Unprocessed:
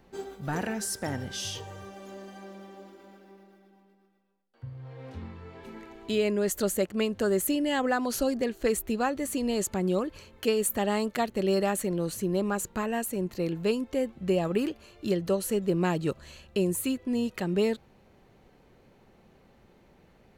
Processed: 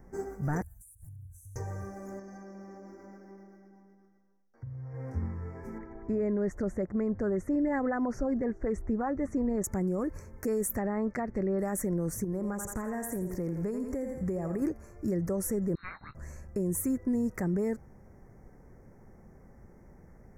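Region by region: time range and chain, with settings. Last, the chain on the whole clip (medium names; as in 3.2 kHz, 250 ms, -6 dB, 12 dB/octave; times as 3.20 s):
0.62–1.56 s: inverse Chebyshev band-stop 200–5400 Hz + compression 12:1, threshold -51 dBFS
2.19–4.94 s: resonant high shelf 7.1 kHz -6.5 dB, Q 3 + compression 4:1, threshold -45 dBFS
5.78–9.64 s: tape spacing loss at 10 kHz 29 dB + sweeping bell 5.2 Hz 730–6300 Hz +7 dB
10.72–11.59 s: block-companded coder 7-bit + low-pass that closes with the level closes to 1.8 kHz, closed at -22 dBFS + peaking EQ 3.3 kHz +8.5 dB 0.97 oct
12.24–14.62 s: thinning echo 84 ms, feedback 44%, high-pass 330 Hz, level -7.5 dB + compression 4:1, threshold -33 dBFS
15.75–16.15 s: frequency inversion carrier 4 kHz + doubling 21 ms -12 dB
whole clip: Chebyshev band-stop 2–5.5 kHz, order 3; bass shelf 160 Hz +11 dB; peak limiter -22.5 dBFS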